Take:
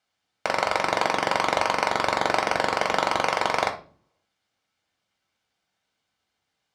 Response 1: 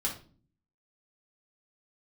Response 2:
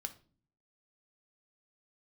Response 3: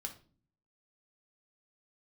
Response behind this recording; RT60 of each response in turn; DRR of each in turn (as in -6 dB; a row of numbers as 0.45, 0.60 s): 3; 0.40, 0.40, 0.40 s; -3.5, 7.0, 2.5 dB